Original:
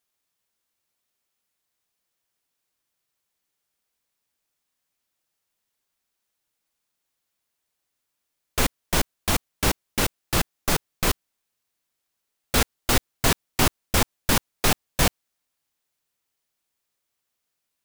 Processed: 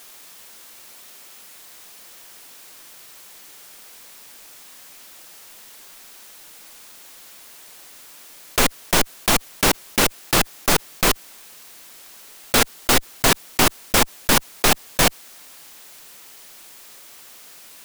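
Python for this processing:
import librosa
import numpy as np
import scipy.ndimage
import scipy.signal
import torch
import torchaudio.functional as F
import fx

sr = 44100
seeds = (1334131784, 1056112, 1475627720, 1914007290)

y = fx.peak_eq(x, sr, hz=65.0, db=-13.5, octaves=1.9)
y = fx.env_flatten(y, sr, amount_pct=50)
y = y * 10.0 ** (4.5 / 20.0)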